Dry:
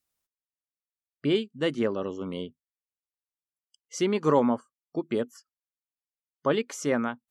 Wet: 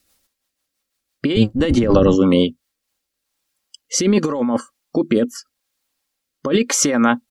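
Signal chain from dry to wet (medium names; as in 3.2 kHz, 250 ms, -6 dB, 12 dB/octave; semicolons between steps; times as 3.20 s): 1.34–2.15 s: octave divider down 1 oct, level -1 dB; peaking EQ 4.4 kHz +3 dB 0.57 oct; comb 3.7 ms, depth 39%; compressor with a negative ratio -30 dBFS, ratio -1; rotary cabinet horn 6 Hz, later 0.85 Hz, at 2.37 s; loudness maximiser +18.5 dB; trim -1.5 dB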